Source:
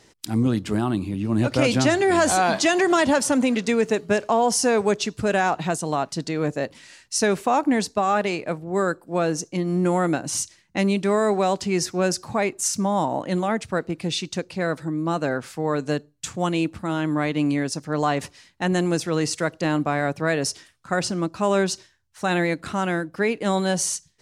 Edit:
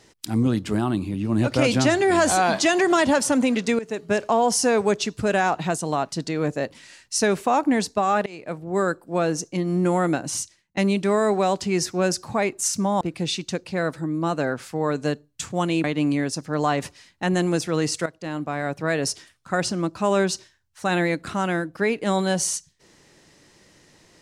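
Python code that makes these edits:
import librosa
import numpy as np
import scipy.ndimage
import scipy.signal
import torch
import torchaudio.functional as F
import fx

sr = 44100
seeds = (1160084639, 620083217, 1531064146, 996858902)

y = fx.edit(x, sr, fx.fade_in_from(start_s=3.79, length_s=0.41, floor_db=-16.0),
    fx.fade_in_from(start_s=8.26, length_s=0.41, floor_db=-22.5),
    fx.fade_out_to(start_s=10.25, length_s=0.52, floor_db=-18.5),
    fx.cut(start_s=13.01, length_s=0.84),
    fx.cut(start_s=16.68, length_s=0.55),
    fx.fade_in_from(start_s=19.45, length_s=1.01, floor_db=-13.0), tone=tone)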